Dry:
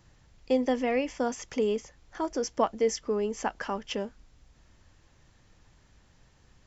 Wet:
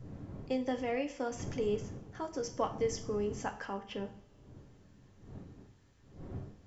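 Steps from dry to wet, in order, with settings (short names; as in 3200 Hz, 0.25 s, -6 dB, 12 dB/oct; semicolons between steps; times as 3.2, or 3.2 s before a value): wind noise 220 Hz -41 dBFS; 3.65–4.05 bell 6700 Hz -12 dB 1.3 oct; reverb, pre-delay 3 ms, DRR 5 dB; gain -8 dB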